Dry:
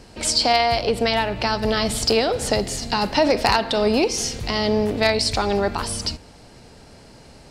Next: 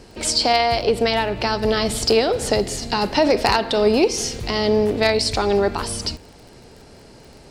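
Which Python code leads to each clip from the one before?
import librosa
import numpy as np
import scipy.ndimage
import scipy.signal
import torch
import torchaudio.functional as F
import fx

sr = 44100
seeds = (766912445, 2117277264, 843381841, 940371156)

y = fx.peak_eq(x, sr, hz=390.0, db=5.0, octaves=0.56)
y = fx.dmg_crackle(y, sr, seeds[0], per_s=23.0, level_db=-35.0)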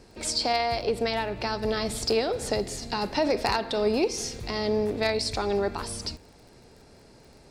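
y = fx.notch(x, sr, hz=3000.0, q=12.0)
y = F.gain(torch.from_numpy(y), -8.0).numpy()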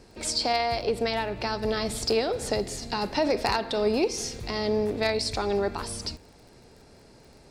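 y = x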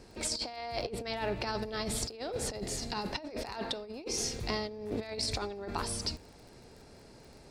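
y = fx.over_compress(x, sr, threshold_db=-30.0, ratio=-0.5)
y = F.gain(torch.from_numpy(y), -5.0).numpy()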